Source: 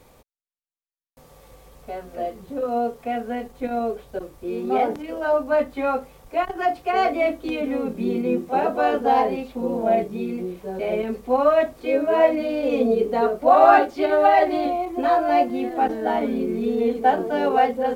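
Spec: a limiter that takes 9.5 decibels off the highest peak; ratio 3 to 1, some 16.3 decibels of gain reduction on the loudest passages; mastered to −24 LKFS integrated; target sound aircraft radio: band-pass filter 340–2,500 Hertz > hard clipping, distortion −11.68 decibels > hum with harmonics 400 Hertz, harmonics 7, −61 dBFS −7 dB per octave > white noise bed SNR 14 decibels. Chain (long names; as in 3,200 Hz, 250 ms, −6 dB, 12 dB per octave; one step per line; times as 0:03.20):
downward compressor 3 to 1, threshold −32 dBFS
brickwall limiter −28 dBFS
band-pass filter 340–2,500 Hz
hard clipping −36 dBFS
hum with harmonics 400 Hz, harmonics 7, −61 dBFS −7 dB per octave
white noise bed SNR 14 dB
level +16 dB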